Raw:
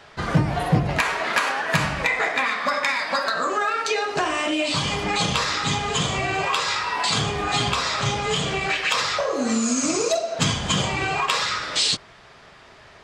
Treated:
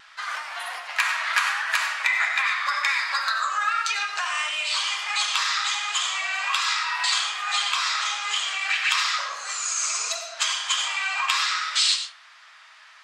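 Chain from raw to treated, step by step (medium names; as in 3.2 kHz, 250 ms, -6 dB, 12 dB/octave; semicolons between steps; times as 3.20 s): high-pass 1.1 kHz 24 dB/octave; vibrato 1.4 Hz 17 cents; reverberation RT60 0.40 s, pre-delay 55 ms, DRR 7 dB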